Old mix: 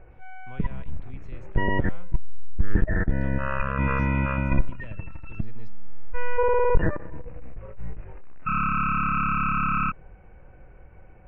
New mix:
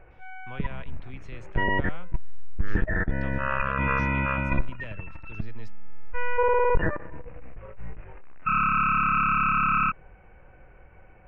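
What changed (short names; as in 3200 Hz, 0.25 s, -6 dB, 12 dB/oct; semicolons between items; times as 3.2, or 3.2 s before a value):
speech +4.5 dB; master: add tilt shelf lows -4 dB, about 640 Hz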